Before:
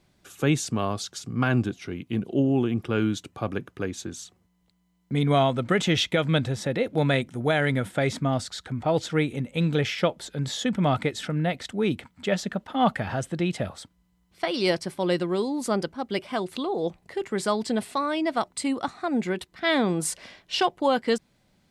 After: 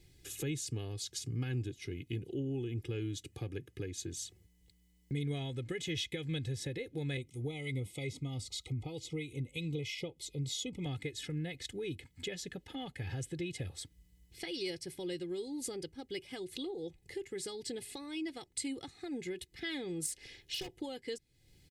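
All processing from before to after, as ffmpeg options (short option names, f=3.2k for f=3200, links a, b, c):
-filter_complex "[0:a]asettb=1/sr,asplit=3[a][b][c];[a]atrim=end=7.174[d];[b]atrim=start=7.17:end=10.86,asetpts=PTS-STARTPTS,afade=t=in:d=0.004:c=qsin,afade=t=out:st=3.686:d=0.004:c=qsin,acrossover=split=1200[e][f];[e]aeval=exprs='val(0)*(1-0.5/2+0.5/2*cos(2*PI*3.1*n/s))':c=same[g];[f]aeval=exprs='val(0)*(1-0.5/2-0.5/2*cos(2*PI*3.1*n/s))':c=same[h];[g][h]amix=inputs=2:normalize=0,asuperstop=centerf=1600:order=20:qfactor=2.4[i];[c]atrim=start=10.856[j];[d][i]acrossfade=d=0.004:c1=hsin:c2=qsin[k];[k][j]acrossfade=d=0.004:c1=qsin:c2=hsin,asettb=1/sr,asplit=3[l][m][n];[l]atrim=end=20.064[o];[m]atrim=start=20.06:end=20.69,asetpts=PTS-STARTPTS,afade=t=in:d=0.004:c=qsin,afade=t=out:st=0.626:d=0.004:c=qsin,tremolo=f=220:d=0.947,asoftclip=type=hard:threshold=-24.5dB[p];[n]atrim=start=20.686[q];[o][p]acrossfade=d=0.004:c1=hsin:c2=qsin[r];[r][q]acrossfade=d=0.004:c1=qsin:c2=hsin,aecho=1:1:2.4:0.8,acompressor=threshold=-41dB:ratio=2.5,firequalizer=gain_entry='entry(130,0);entry(770,-17);entry(1200,-22);entry(1900,-5);entry(8800,0)':delay=0.05:min_phase=1,volume=3.5dB"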